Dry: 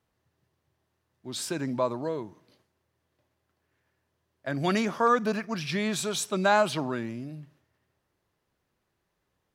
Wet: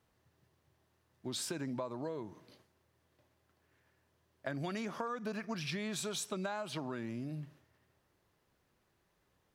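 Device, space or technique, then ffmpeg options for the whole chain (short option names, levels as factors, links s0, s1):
serial compression, leveller first: -af "acompressor=threshold=0.0447:ratio=2,acompressor=threshold=0.0112:ratio=5,volume=1.26"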